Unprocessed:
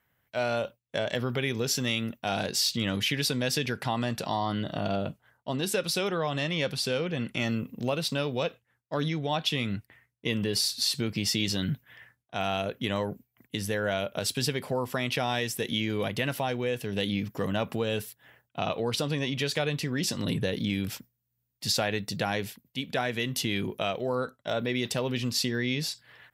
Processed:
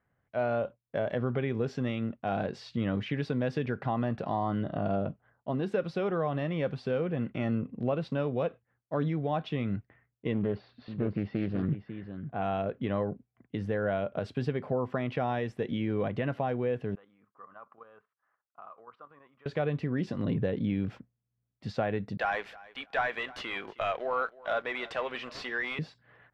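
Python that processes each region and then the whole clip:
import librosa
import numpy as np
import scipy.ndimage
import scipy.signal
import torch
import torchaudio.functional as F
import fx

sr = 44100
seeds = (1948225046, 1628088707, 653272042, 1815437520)

y = fx.chain(x, sr, fx.gaussian_blur(sigma=2.8),
    fx.echo_single(ms=547, db=-10.0),
    fx.doppler_dist(depth_ms=0.36), at=(10.33, 12.42))
y = fx.chain(y, sr, fx.bandpass_q(hz=1200.0, q=5.9),
    fx.level_steps(step_db=9), at=(16.95, 19.46))
y = fx.chain(y, sr, fx.highpass(hz=1100.0, slope=12),
    fx.leveller(passes=3),
    fx.echo_feedback(ms=315, feedback_pct=20, wet_db=-20.5), at=(22.17, 25.79))
y = scipy.signal.sosfilt(scipy.signal.butter(2, 1300.0, 'lowpass', fs=sr, output='sos'), y)
y = fx.notch(y, sr, hz=920.0, q=13.0)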